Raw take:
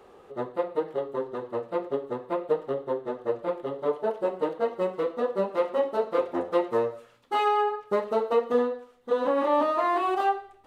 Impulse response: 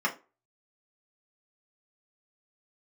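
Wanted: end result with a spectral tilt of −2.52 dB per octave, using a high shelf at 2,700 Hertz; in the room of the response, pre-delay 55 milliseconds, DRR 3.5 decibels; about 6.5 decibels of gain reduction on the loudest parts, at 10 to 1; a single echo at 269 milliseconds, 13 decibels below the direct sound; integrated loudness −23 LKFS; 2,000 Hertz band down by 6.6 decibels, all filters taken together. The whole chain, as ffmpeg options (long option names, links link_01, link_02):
-filter_complex "[0:a]equalizer=frequency=2000:width_type=o:gain=-6,highshelf=frequency=2700:gain=-6.5,acompressor=threshold=-26dB:ratio=10,aecho=1:1:269:0.224,asplit=2[link_01][link_02];[1:a]atrim=start_sample=2205,adelay=55[link_03];[link_02][link_03]afir=irnorm=-1:irlink=0,volume=-14dB[link_04];[link_01][link_04]amix=inputs=2:normalize=0,volume=8dB"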